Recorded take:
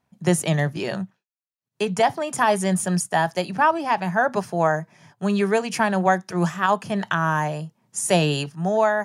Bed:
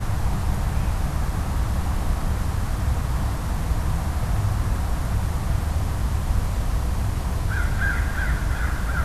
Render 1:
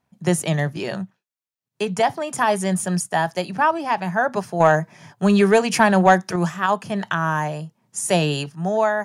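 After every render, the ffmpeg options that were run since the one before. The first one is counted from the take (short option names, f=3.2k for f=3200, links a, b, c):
-filter_complex "[0:a]asettb=1/sr,asplit=3[a][b][c];[a]atrim=end=4.604[d];[b]atrim=start=4.6:end=6.36,asetpts=PTS-STARTPTS,afade=t=in:d=0.004:c=qsin,afade=t=out:st=1.756:d=0.004:c=qsin,acontrast=56[e];[c]atrim=start=6.356[f];[d][e]acrossfade=d=0.004:c1=hsin:c2=qsin[g];[g][f]acrossfade=d=0.004:c1=qsin:c2=hsin"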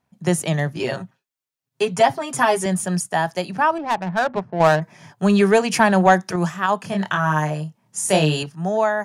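-filter_complex "[0:a]asettb=1/sr,asplit=3[a][b][c];[a]atrim=end=0.794[d];[b]atrim=start=0.79:end=2.66,asetpts=PTS-STARTPTS,afade=t=in:d=0.004:c=qsin,afade=t=out:st=1.866:d=0.004:c=qsin,aecho=1:1:7.5:0.93,atrim=end_sample=82467[e];[c]atrim=start=2.656[f];[d][e]acrossfade=d=0.004:c1=hsin:c2=qsin[g];[g][f]acrossfade=d=0.004:c1=qsin:c2=hsin,asettb=1/sr,asplit=3[h][i][j];[h]atrim=end=3.784[k];[i]atrim=start=3.78:end=4.82,asetpts=PTS-STARTPTS,afade=t=in:d=0.004:c=qsin,afade=t=out:st=1.036:d=0.004:c=qsin,adynamicsmooth=sensitivity=1.5:basefreq=620[l];[j]atrim=start=4.816[m];[k][l]acrossfade=d=0.004:c1=hsin:c2=qsin[n];[n][m]acrossfade=d=0.004:c1=qsin:c2=hsin,asettb=1/sr,asplit=3[o][p][q];[o]atrim=end=6.804[r];[p]atrim=start=6.8:end=8.43,asetpts=PTS-STARTPTS,afade=t=in:d=0.004:c=qsin,afade=t=out:st=1.626:d=0.004:c=qsin,asplit=2[s][t];[t]adelay=26,volume=-3dB[u];[s][u]amix=inputs=2:normalize=0,atrim=end_sample=71883[v];[q]atrim=start=8.426[w];[r][v]acrossfade=d=0.004:c1=hsin:c2=qsin[x];[x][w]acrossfade=d=0.004:c1=qsin:c2=hsin"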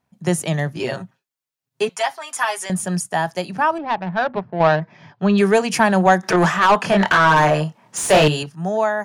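-filter_complex "[0:a]asettb=1/sr,asplit=3[a][b][c];[a]atrim=end=1.894[d];[b]atrim=start=1.89:end=2.7,asetpts=PTS-STARTPTS,afade=t=in:d=0.004:c=qsin,afade=t=out:st=0.806:d=0.004:c=qsin,highpass=1k[e];[c]atrim=start=2.696[f];[d][e]acrossfade=d=0.004:c1=hsin:c2=qsin[g];[g][f]acrossfade=d=0.004:c1=qsin:c2=hsin,asettb=1/sr,asplit=3[h][i][j];[h]atrim=end=3.794[k];[i]atrim=start=3.79:end=5.38,asetpts=PTS-STARTPTS,afade=t=in:d=0.004:c=qsin,afade=t=out:st=1.586:d=0.004:c=qsin,lowpass=f=4.5k:w=0.5412,lowpass=f=4.5k:w=1.3066[l];[j]atrim=start=5.376[m];[k][l]acrossfade=d=0.004:c1=hsin:c2=qsin[n];[n][m]acrossfade=d=0.004:c1=qsin:c2=hsin,asettb=1/sr,asplit=3[o][p][q];[o]atrim=end=6.234[r];[p]atrim=start=6.23:end=8.28,asetpts=PTS-STARTPTS,afade=t=in:d=0.004:c=qsin,afade=t=out:st=2.046:d=0.004:c=qsin,asplit=2[s][t];[t]highpass=f=720:p=1,volume=24dB,asoftclip=type=tanh:threshold=-4dB[u];[s][u]amix=inputs=2:normalize=0,lowpass=f=2k:p=1,volume=-6dB[v];[q]atrim=start=8.276[w];[r][v]acrossfade=d=0.004:c1=hsin:c2=qsin[x];[x][w]acrossfade=d=0.004:c1=qsin:c2=hsin"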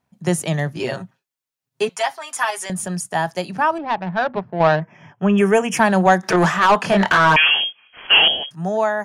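-filter_complex "[0:a]asettb=1/sr,asplit=3[a][b][c];[a]atrim=end=2.504[d];[b]atrim=start=2.5:end=3.15,asetpts=PTS-STARTPTS,afade=t=in:d=0.004:c=qsin,afade=t=out:st=0.646:d=0.004:c=qsin,acompressor=threshold=-21dB:ratio=6:attack=3.2:release=140:knee=1:detection=peak[e];[c]atrim=start=3.146[f];[d][e]acrossfade=d=0.004:c1=hsin:c2=qsin[g];[g][f]acrossfade=d=0.004:c1=qsin:c2=hsin,asettb=1/sr,asplit=3[h][i][j];[h]atrim=end=4.824[k];[i]atrim=start=4.82:end=5.77,asetpts=PTS-STARTPTS,afade=t=in:d=0.004:c=qsin,afade=t=out:st=0.946:d=0.004:c=qsin,asuperstop=centerf=4200:order=8:qfactor=2.1[l];[j]atrim=start=5.766[m];[k][l]acrossfade=d=0.004:c1=hsin:c2=qsin[n];[n][m]acrossfade=d=0.004:c1=qsin:c2=hsin,asettb=1/sr,asplit=3[o][p][q];[o]atrim=end=7.364[r];[p]atrim=start=7.36:end=8.51,asetpts=PTS-STARTPTS,afade=t=in:d=0.004:c=qsin,afade=t=out:st=1.146:d=0.004:c=qsin,lowpass=f=2.9k:t=q:w=0.5098,lowpass=f=2.9k:t=q:w=0.6013,lowpass=f=2.9k:t=q:w=0.9,lowpass=f=2.9k:t=q:w=2.563,afreqshift=-3400[s];[q]atrim=start=8.506[t];[r][s]acrossfade=d=0.004:c1=hsin:c2=qsin[u];[u][t]acrossfade=d=0.004:c1=qsin:c2=hsin"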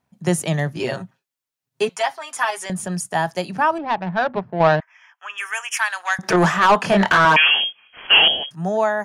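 -filter_complex "[0:a]asettb=1/sr,asplit=3[a][b][c];[a]atrim=end=1.974[d];[b]atrim=start=1.97:end=2.92,asetpts=PTS-STARTPTS,afade=t=in:d=0.004:c=qsin,afade=t=out:st=0.946:d=0.004:c=qsin,highshelf=f=6.9k:g=-5.5[e];[c]atrim=start=2.916[f];[d][e]acrossfade=d=0.004:c1=hsin:c2=qsin[g];[g][f]acrossfade=d=0.004:c1=qsin:c2=hsin,asettb=1/sr,asplit=3[h][i][j];[h]atrim=end=4.804[k];[i]atrim=start=4.8:end=6.19,asetpts=PTS-STARTPTS,afade=t=in:d=0.004:c=qsin,afade=t=out:st=1.386:d=0.004:c=qsin,highpass=f=1.2k:w=0.5412,highpass=f=1.2k:w=1.3066[l];[j]atrim=start=6.186[m];[k][l]acrossfade=d=0.004:c1=hsin:c2=qsin[n];[n][m]acrossfade=d=0.004:c1=qsin:c2=hsin,asettb=1/sr,asplit=3[o][p][q];[o]atrim=end=7.254[r];[p]atrim=start=7.25:end=7.65,asetpts=PTS-STARTPTS,afade=t=in:d=0.004:c=qsin,afade=t=out:st=0.396:d=0.004:c=qsin,highpass=f=170:w=0.5412,highpass=f=170:w=1.3066[s];[q]atrim=start=7.646[t];[r][s]acrossfade=d=0.004:c1=hsin:c2=qsin[u];[u][t]acrossfade=d=0.004:c1=qsin:c2=hsin"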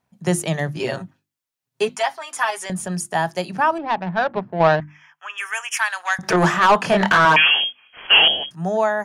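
-af "bandreject=f=50:t=h:w=6,bandreject=f=100:t=h:w=6,bandreject=f=150:t=h:w=6,bandreject=f=200:t=h:w=6,bandreject=f=250:t=h:w=6,bandreject=f=300:t=h:w=6,bandreject=f=350:t=h:w=6"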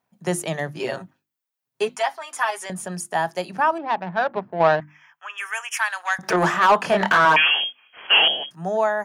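-af "lowpass=f=1.7k:p=1,aemphasis=mode=production:type=bsi"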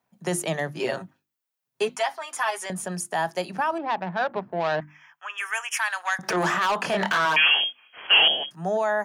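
-filter_complex "[0:a]acrossover=split=120|2500[a][b][c];[a]acompressor=threshold=-53dB:ratio=6[d];[b]alimiter=limit=-16.5dB:level=0:latency=1:release=42[e];[d][e][c]amix=inputs=3:normalize=0"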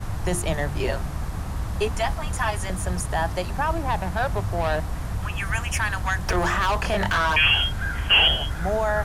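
-filter_complex "[1:a]volume=-5dB[a];[0:a][a]amix=inputs=2:normalize=0"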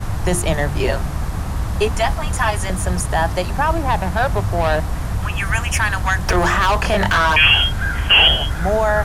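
-af "volume=6.5dB,alimiter=limit=-2dB:level=0:latency=1"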